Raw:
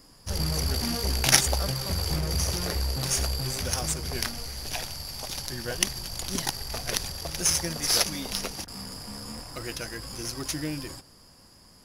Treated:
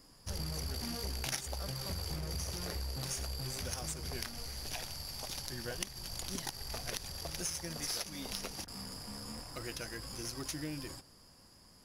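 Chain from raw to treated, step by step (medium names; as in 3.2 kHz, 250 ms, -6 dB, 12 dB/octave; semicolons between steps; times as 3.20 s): compression 4:1, threshold -30 dBFS, peak gain reduction 14.5 dB; trim -6 dB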